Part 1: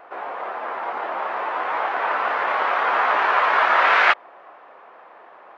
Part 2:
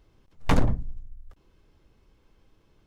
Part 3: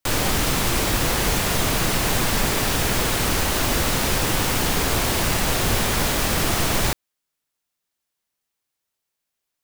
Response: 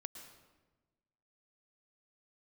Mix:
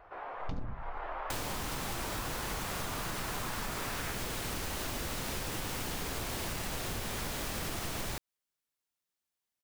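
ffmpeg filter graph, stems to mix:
-filter_complex "[0:a]acompressor=threshold=0.0891:ratio=6,volume=0.266[s0];[1:a]lowpass=f=5300:w=0.5412,lowpass=f=5300:w=1.3066,equalizer=f=1700:t=o:w=2.1:g=-13.5,volume=0.596[s1];[2:a]adelay=1250,volume=0.376[s2];[s0][s1][s2]amix=inputs=3:normalize=0,acompressor=threshold=0.0224:ratio=10"

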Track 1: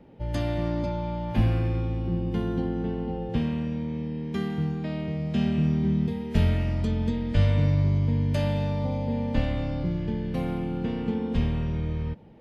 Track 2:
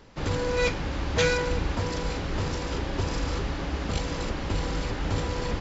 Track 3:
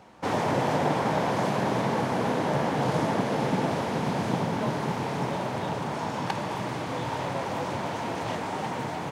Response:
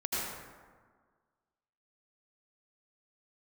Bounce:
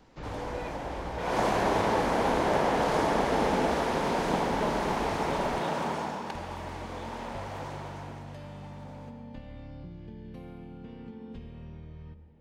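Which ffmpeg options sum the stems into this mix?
-filter_complex "[0:a]acompressor=threshold=0.0398:ratio=6,volume=0.211,asplit=2[s0][s1];[s1]volume=0.168[s2];[1:a]acrossover=split=2800[s3][s4];[s4]acompressor=threshold=0.00355:ratio=4:attack=1:release=60[s5];[s3][s5]amix=inputs=2:normalize=0,alimiter=limit=0.0794:level=0:latency=1:release=398,volume=0.355[s6];[2:a]highpass=270,volume=0.841,afade=t=in:st=1.18:d=0.2:silence=0.223872,afade=t=out:st=5.82:d=0.37:silence=0.354813,afade=t=out:st=7.65:d=0.64:silence=0.251189,asplit=2[s7][s8];[s8]volume=0.316[s9];[3:a]atrim=start_sample=2205[s10];[s2][s9]amix=inputs=2:normalize=0[s11];[s11][s10]afir=irnorm=-1:irlink=0[s12];[s0][s6][s7][s12]amix=inputs=4:normalize=0"

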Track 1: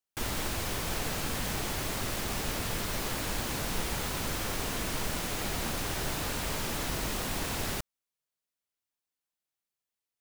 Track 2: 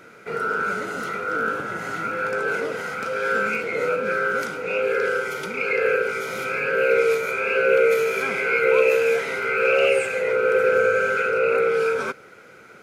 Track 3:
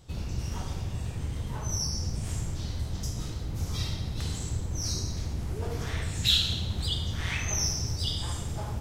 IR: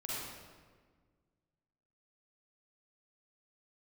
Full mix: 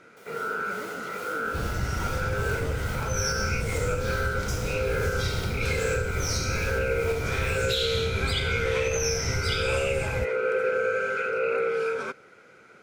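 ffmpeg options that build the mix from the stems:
-filter_complex "[0:a]dynaudnorm=f=160:g=11:m=1.88,tremolo=f=2.4:d=0.6,highpass=f=460:t=q:w=4.9,volume=0.211[s0];[1:a]lowpass=9700,volume=0.501[s1];[2:a]adelay=1450,volume=1.41[s2];[s0][s1][s2]amix=inputs=3:normalize=0,alimiter=limit=0.158:level=0:latency=1:release=161"

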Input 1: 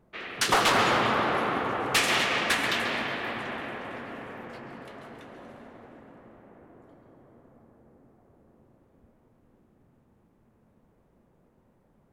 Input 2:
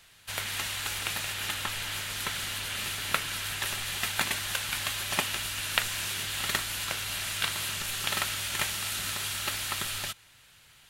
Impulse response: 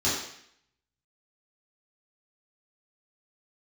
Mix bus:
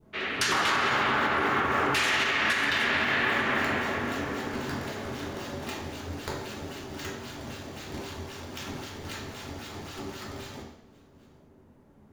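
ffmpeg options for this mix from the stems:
-filter_complex "[0:a]adynamicequalizer=threshold=0.0112:dfrequency=1700:dqfactor=0.87:tfrequency=1700:tqfactor=0.87:attack=5:release=100:ratio=0.375:range=4:mode=boostabove:tftype=bell,acompressor=threshold=0.0447:ratio=2.5,volume=1.33,asplit=2[s0][s1];[s1]volume=0.266[s2];[1:a]acrusher=samples=19:mix=1:aa=0.000001:lfo=1:lforange=30.4:lforate=3.8,adelay=500,volume=0.141,asplit=2[s3][s4];[s4]volume=0.631[s5];[2:a]atrim=start_sample=2205[s6];[s2][s5]amix=inputs=2:normalize=0[s7];[s7][s6]afir=irnorm=-1:irlink=0[s8];[s0][s3][s8]amix=inputs=3:normalize=0,alimiter=limit=0.158:level=0:latency=1:release=127"

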